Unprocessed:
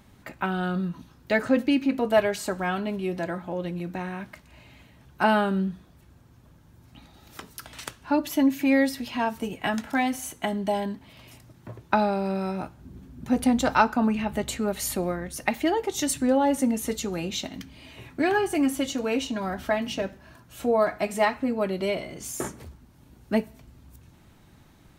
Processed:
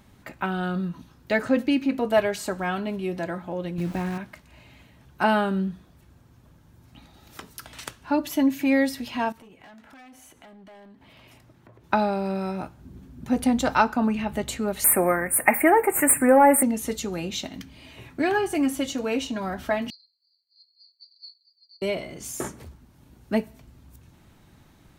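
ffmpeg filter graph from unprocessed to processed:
ffmpeg -i in.wav -filter_complex "[0:a]asettb=1/sr,asplit=3[link_01][link_02][link_03];[link_01]atrim=end=3.784[link_04];[link_02]atrim=start=3.78:end=4.18,asetpts=PTS-STARTPTS,afade=type=in:duration=0.004:curve=qsin,afade=type=out:start_time=0.396:duration=0.004:curve=qsin,lowshelf=frequency=260:gain=9.5,aeval=exprs='val(0)*gte(abs(val(0)),0.0141)':channel_layout=same[link_05];[link_03]atrim=start=4.176[link_06];[link_04][link_05]acrossfade=duration=0.004:curve1=hsin:curve2=qsin[link_07];[link_07][link_06]acrossfade=duration=0.004:curve1=qsin:curve2=hsin,asettb=1/sr,asplit=3[link_08][link_09][link_10];[link_08]atrim=end=9.324[link_11];[link_09]atrim=start=9.32:end=11.84,asetpts=PTS-STARTPTS,afade=type=in:duration=0.004:curve=qsin,afade=type=out:start_time=2.516:duration=0.004:curve=qsin,asoftclip=type=hard:threshold=-28.5dB,bass=frequency=250:gain=-4,treble=frequency=4000:gain=-7,acompressor=threshold=-47dB:ratio=8:attack=3.2:release=140:knee=1:detection=peak[link_12];[link_10]atrim=start=11.836[link_13];[link_11][link_12]acrossfade=duration=0.004:curve1=hsin:curve2=qsin[link_14];[link_14][link_13]acrossfade=duration=0.004:curve1=qsin:curve2=hsin,asettb=1/sr,asplit=3[link_15][link_16][link_17];[link_15]atrim=end=14.844[link_18];[link_16]atrim=start=14.84:end=16.63,asetpts=PTS-STARTPTS,afade=type=in:duration=0.004:curve=qsin,afade=type=out:start_time=1.786:duration=0.004:curve=qsin,aemphasis=mode=production:type=75kf,asplit=2[link_19][link_20];[link_20]highpass=frequency=720:poles=1,volume=17dB,asoftclip=type=tanh:threshold=-2.5dB[link_21];[link_19][link_21]amix=inputs=2:normalize=0,lowpass=frequency=4700:poles=1,volume=-6dB,asuperstop=centerf=4500:order=12:qfactor=0.76[link_22];[link_17]atrim=start=16.626[link_23];[link_18][link_22]acrossfade=duration=0.004:curve1=hsin:curve2=qsin[link_24];[link_24][link_23]acrossfade=duration=0.004:curve1=qsin:curve2=hsin,asettb=1/sr,asplit=3[link_25][link_26][link_27];[link_25]atrim=end=19.904[link_28];[link_26]atrim=start=19.9:end=21.82,asetpts=PTS-STARTPTS,afade=type=in:duration=0.004:curve=qsin,afade=type=out:start_time=1.916:duration=0.004:curve=qsin,asuperpass=centerf=4100:order=20:qfactor=5.4,afreqshift=340[link_29];[link_27]atrim=start=21.816[link_30];[link_28][link_29]acrossfade=duration=0.004:curve1=hsin:curve2=qsin[link_31];[link_31][link_30]acrossfade=duration=0.004:curve1=qsin:curve2=hsin" out.wav

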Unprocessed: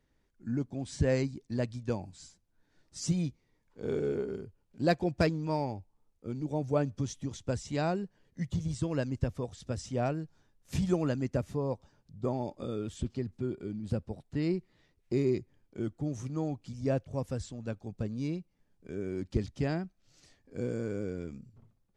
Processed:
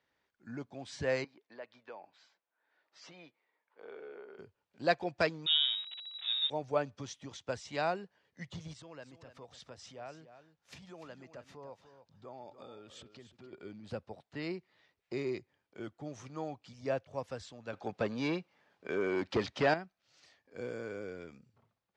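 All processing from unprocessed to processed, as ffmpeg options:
ffmpeg -i in.wav -filter_complex "[0:a]asettb=1/sr,asplit=3[link_01][link_02][link_03];[link_01]atrim=end=1.244[link_04];[link_02]atrim=start=1.24:end=4.39,asetpts=PTS-STARTPTS,afade=type=in:duration=0.004:curve=qsin,afade=type=out:start_time=3.146:duration=0.004:curve=qsin,highpass=420,lowpass=2600,acompressor=threshold=-46dB:ratio=2:attack=3.2:release=140:knee=1:detection=peak[link_05];[link_03]atrim=start=4.386[link_06];[link_04][link_05]acrossfade=duration=0.004:curve1=hsin:curve2=qsin[link_07];[link_07][link_06]acrossfade=duration=0.004:curve1=qsin:curve2=hsin,asettb=1/sr,asplit=3[link_08][link_09][link_10];[link_08]atrim=end=5.464[link_11];[link_09]atrim=start=5.46:end=6.5,asetpts=PTS-STARTPTS,afade=type=in:duration=0.004:curve=qsin,afade=type=out:start_time=1.036:duration=0.004:curve=qsin,aeval=exprs='val(0)+0.5*0.00841*sgn(val(0))':channel_layout=same,lowpass=frequency=3300:width_type=q:width=0.5098,lowpass=frequency=3300:width_type=q:width=0.6013,lowpass=frequency=3300:width_type=q:width=0.9,lowpass=frequency=3300:width_type=q:width=2.563,afreqshift=-3900[link_12];[link_10]atrim=start=6.496[link_13];[link_11][link_12]acrossfade=duration=0.004:curve1=hsin:curve2=qsin[link_14];[link_14][link_13]acrossfade=duration=0.004:curve1=qsin:curve2=hsin,asettb=1/sr,asplit=3[link_15][link_16][link_17];[link_15]atrim=end=8.734[link_18];[link_16]atrim=start=8.73:end=13.53,asetpts=PTS-STARTPTS,afade=type=in:duration=0.004:curve=qsin,afade=type=out:start_time=4.796:duration=0.004:curve=qsin,acompressor=threshold=-44dB:ratio=3:attack=3.2:release=140:knee=1:detection=peak,aecho=1:1:294:0.266,atrim=end_sample=211680[link_19];[link_17]atrim=start=13.526[link_20];[link_18][link_19]acrossfade=duration=0.004:curve1=hsin:curve2=qsin[link_21];[link_21][link_20]acrossfade=duration=0.004:curve1=qsin:curve2=hsin,asettb=1/sr,asplit=3[link_22][link_23][link_24];[link_22]atrim=end=17.734[link_25];[link_23]atrim=start=17.73:end=19.74,asetpts=PTS-STARTPTS,afade=type=in:duration=0.004:curve=qsin,afade=type=out:start_time=2.006:duration=0.004:curve=qsin,asplit=2[link_26][link_27];[link_27]highpass=frequency=720:poles=1,volume=20dB,asoftclip=type=tanh:threshold=-16.5dB[link_28];[link_26][link_28]amix=inputs=2:normalize=0,lowpass=frequency=3400:poles=1,volume=-6dB,lowshelf=frequency=470:gain=7[link_29];[link_24]atrim=start=19.736[link_30];[link_25][link_29]acrossfade=duration=0.004:curve1=hsin:curve2=qsin[link_31];[link_31][link_30]acrossfade=duration=0.004:curve1=qsin:curve2=hsin,highpass=89,acrossover=split=540 5300:gain=0.178 1 0.141[link_32][link_33][link_34];[link_32][link_33][link_34]amix=inputs=3:normalize=0,volume=2.5dB" out.wav

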